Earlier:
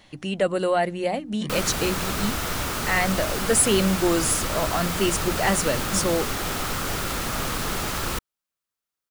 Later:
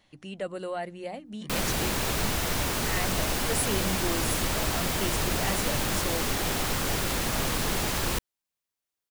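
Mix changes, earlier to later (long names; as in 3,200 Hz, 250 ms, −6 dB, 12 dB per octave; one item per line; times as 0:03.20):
speech −11.5 dB
background: add parametric band 1,300 Hz −7 dB 0.35 octaves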